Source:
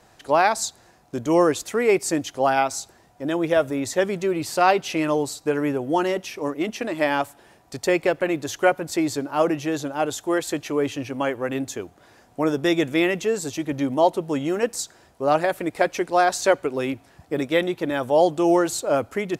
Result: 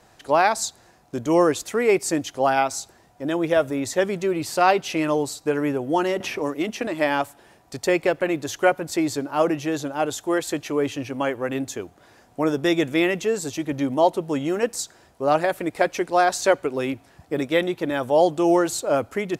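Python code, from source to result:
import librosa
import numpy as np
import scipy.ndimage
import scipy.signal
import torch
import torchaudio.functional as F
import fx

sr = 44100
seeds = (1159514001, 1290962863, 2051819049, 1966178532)

y = fx.band_squash(x, sr, depth_pct=70, at=(6.2, 6.87))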